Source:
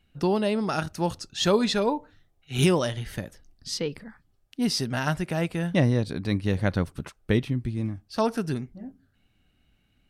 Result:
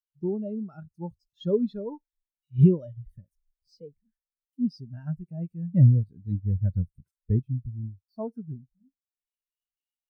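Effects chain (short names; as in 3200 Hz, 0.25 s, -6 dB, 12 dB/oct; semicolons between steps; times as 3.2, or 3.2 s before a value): switching spikes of -26.5 dBFS; low shelf 90 Hz +11 dB; spectral expander 2.5:1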